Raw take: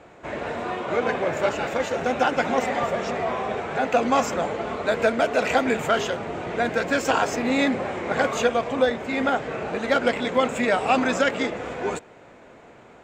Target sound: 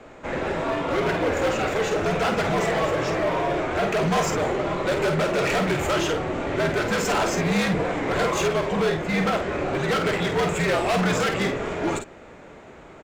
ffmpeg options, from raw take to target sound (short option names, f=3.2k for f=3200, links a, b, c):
-filter_complex "[0:a]afreqshift=-71,asoftclip=type=hard:threshold=-23dB,asplit=2[a][b];[b]adelay=50,volume=-7dB[c];[a][c]amix=inputs=2:normalize=0,volume=3dB"